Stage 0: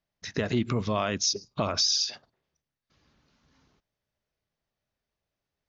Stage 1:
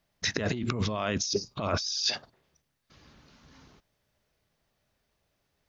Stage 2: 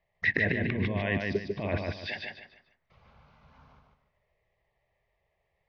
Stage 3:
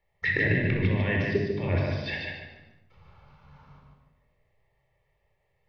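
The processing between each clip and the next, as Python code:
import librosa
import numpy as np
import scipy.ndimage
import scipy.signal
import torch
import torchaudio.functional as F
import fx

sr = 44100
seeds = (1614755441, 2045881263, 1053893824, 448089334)

y1 = fx.over_compress(x, sr, threshold_db=-34.0, ratio=-1.0)
y1 = y1 * librosa.db_to_amplitude(4.0)
y2 = fx.env_phaser(y1, sr, low_hz=250.0, high_hz=1300.0, full_db=-36.0)
y2 = fx.lowpass_res(y2, sr, hz=1900.0, q=5.1)
y2 = fx.echo_feedback(y2, sr, ms=147, feedback_pct=31, wet_db=-3.5)
y3 = fx.room_shoebox(y2, sr, seeds[0], volume_m3=3000.0, walls='furnished', distance_m=4.3)
y3 = y3 * librosa.db_to_amplitude(-1.5)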